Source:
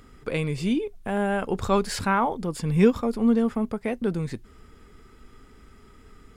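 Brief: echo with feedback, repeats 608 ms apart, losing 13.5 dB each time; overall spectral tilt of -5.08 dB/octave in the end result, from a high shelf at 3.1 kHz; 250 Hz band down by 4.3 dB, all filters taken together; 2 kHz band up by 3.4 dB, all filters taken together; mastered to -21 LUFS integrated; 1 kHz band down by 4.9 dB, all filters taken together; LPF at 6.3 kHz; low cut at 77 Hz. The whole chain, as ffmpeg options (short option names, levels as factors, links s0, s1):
-af "highpass=77,lowpass=6300,equalizer=f=250:t=o:g=-5,equalizer=f=1000:t=o:g=-8.5,equalizer=f=2000:t=o:g=5,highshelf=f=3100:g=8,aecho=1:1:608|1216:0.211|0.0444,volume=2.11"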